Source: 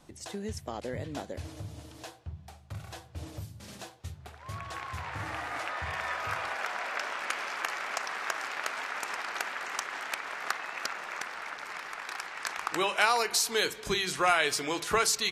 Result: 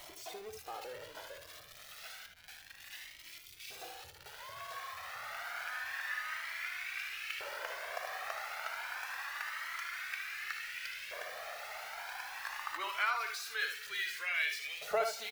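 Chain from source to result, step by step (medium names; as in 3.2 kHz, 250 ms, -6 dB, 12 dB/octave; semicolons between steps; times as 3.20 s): zero-crossing glitches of -21.5 dBFS; hum notches 50/100/150/200 Hz; spectral gate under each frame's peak -30 dB strong; tilt EQ -4.5 dB/octave; LFO high-pass saw up 0.27 Hz 620–2500 Hz; on a send: early reflections 60 ms -11 dB, 76 ms -8 dB; on the sum: hysteresis with a dead band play -46.5 dBFS; graphic EQ 250/1000/8000 Hz -7/-10/-7 dB; Shepard-style flanger rising 0.31 Hz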